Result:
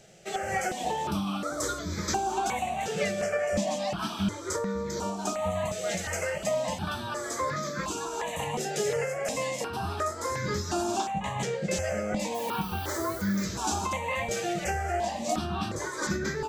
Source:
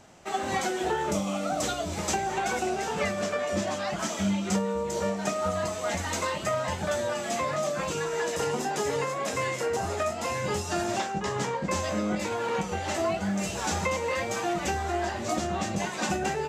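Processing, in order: 12.34–13.43 added noise blue -45 dBFS; step phaser 2.8 Hz 270–2800 Hz; gain +2 dB

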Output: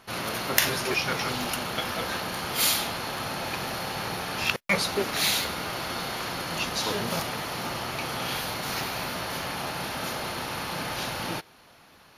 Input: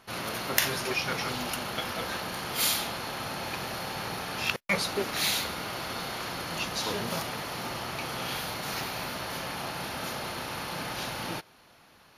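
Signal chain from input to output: crackling interface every 0.25 s repeat, from 0.67; gain +3 dB

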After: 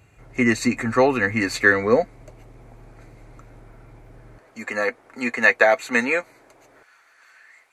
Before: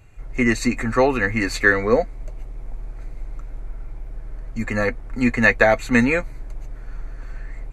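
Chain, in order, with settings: HPF 97 Hz 12 dB/oct, from 4.38 s 400 Hz, from 6.83 s 1500 Hz

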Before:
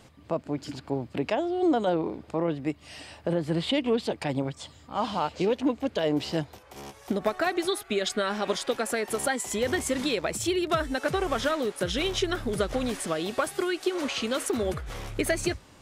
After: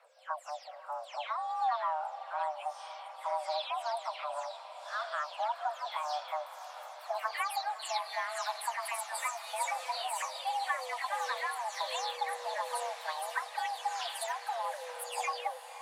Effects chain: spectral delay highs early, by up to 0.252 s; diffused feedback echo 0.557 s, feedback 75%, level -14 dB; frequency shift +450 Hz; gain -7.5 dB

